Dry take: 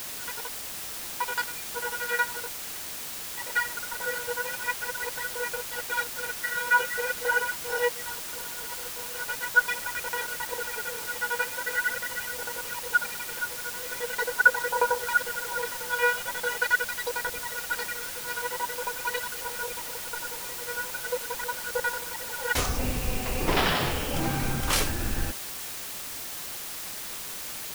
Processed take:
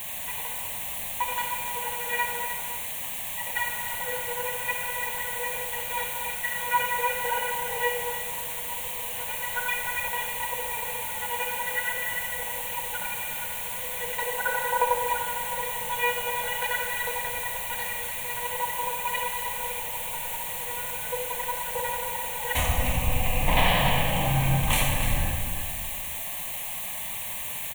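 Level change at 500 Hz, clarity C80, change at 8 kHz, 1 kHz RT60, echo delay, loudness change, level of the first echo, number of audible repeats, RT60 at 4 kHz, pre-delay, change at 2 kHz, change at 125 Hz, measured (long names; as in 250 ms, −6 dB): −0.5 dB, 2.5 dB, +1.0 dB, 1.7 s, 299 ms, +1.5 dB, −9.5 dB, 1, 1.3 s, 36 ms, −3.0 dB, +6.5 dB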